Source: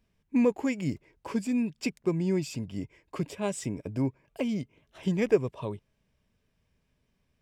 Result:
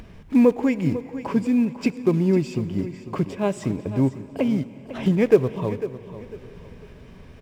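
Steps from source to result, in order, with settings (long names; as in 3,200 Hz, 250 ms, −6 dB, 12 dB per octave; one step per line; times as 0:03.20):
one scale factor per block 5 bits
low-pass filter 1,800 Hz 6 dB per octave
upward compression, threshold −34 dBFS
repeating echo 499 ms, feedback 30%, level −13.5 dB
on a send at −16.5 dB: convolution reverb RT60 4.2 s, pre-delay 28 ms
on the sum: level +8 dB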